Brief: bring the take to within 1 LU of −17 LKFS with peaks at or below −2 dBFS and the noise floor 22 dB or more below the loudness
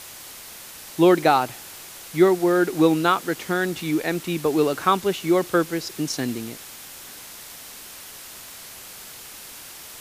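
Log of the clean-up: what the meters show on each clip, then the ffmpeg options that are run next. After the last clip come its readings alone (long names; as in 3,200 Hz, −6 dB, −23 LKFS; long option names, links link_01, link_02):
background noise floor −41 dBFS; target noise floor −44 dBFS; integrated loudness −21.5 LKFS; sample peak −3.5 dBFS; target loudness −17.0 LKFS
→ -af "afftdn=noise_reduction=6:noise_floor=-41"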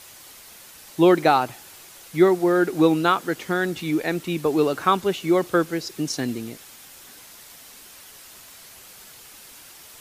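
background noise floor −46 dBFS; integrated loudness −21.5 LKFS; sample peak −4.0 dBFS; target loudness −17.0 LKFS
→ -af "volume=4.5dB,alimiter=limit=-2dB:level=0:latency=1"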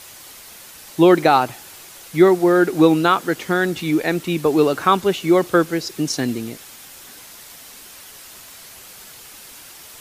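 integrated loudness −17.5 LKFS; sample peak −2.0 dBFS; background noise floor −41 dBFS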